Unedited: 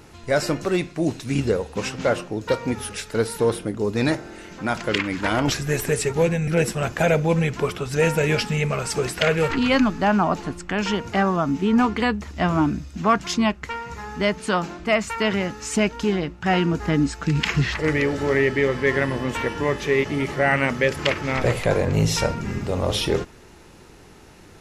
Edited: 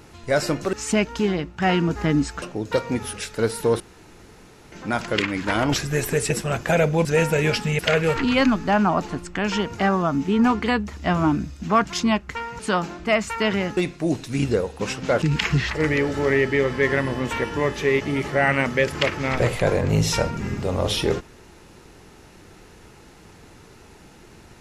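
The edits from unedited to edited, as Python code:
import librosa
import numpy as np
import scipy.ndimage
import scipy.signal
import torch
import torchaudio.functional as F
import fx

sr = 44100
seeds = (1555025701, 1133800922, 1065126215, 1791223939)

y = fx.edit(x, sr, fx.swap(start_s=0.73, length_s=1.45, other_s=15.57, other_length_s=1.69),
    fx.room_tone_fill(start_s=3.56, length_s=0.92),
    fx.cut(start_s=6.06, length_s=0.55),
    fx.cut(start_s=7.36, length_s=0.54),
    fx.cut(start_s=8.64, length_s=0.49),
    fx.cut(start_s=13.93, length_s=0.46), tone=tone)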